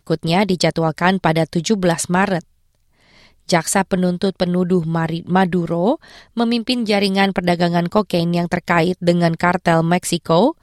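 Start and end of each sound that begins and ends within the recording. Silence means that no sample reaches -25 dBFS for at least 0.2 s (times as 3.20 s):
3.49–5.95 s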